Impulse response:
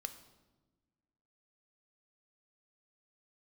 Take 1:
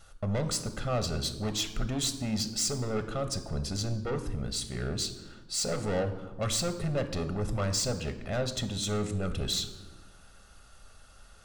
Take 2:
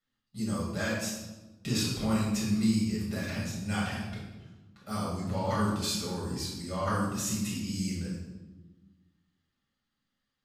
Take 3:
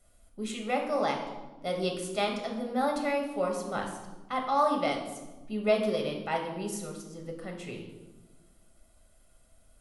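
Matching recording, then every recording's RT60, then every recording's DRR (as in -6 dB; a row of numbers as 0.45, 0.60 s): 1; 1.2, 1.2, 1.2 s; 8.5, -7.5, 1.5 dB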